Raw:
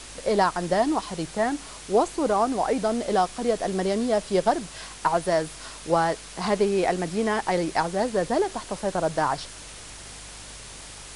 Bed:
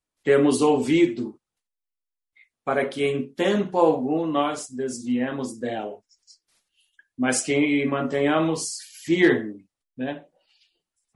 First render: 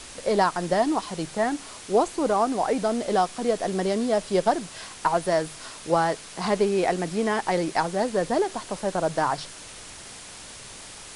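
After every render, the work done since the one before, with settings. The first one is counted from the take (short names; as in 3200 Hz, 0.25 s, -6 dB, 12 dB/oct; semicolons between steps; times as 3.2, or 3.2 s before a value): de-hum 50 Hz, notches 3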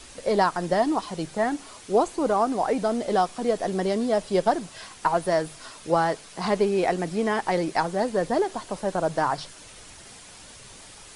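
denoiser 6 dB, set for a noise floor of -43 dBFS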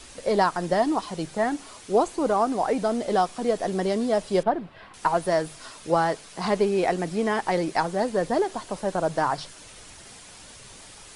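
4.43–4.94 air absorption 440 m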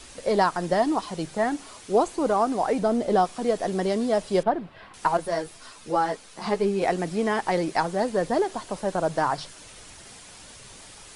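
2.79–3.25 tilt shelf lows +3.5 dB; 5.17–6.82 ensemble effect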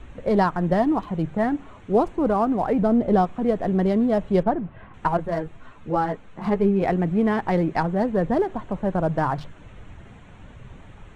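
Wiener smoothing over 9 samples; tone controls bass +12 dB, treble -9 dB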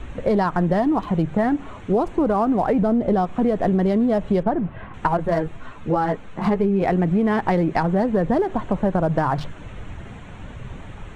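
in parallel at +3 dB: limiter -15.5 dBFS, peak gain reduction 7 dB; on the sum: compressor, threshold -16 dBFS, peak gain reduction 7.5 dB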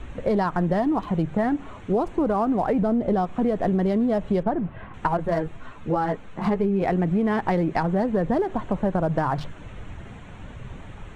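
gain -3 dB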